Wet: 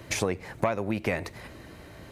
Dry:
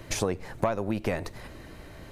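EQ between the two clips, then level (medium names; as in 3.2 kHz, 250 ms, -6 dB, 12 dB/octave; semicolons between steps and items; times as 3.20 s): dynamic bell 2.2 kHz, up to +7 dB, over -52 dBFS, Q 2.5; high-pass 58 Hz; 0.0 dB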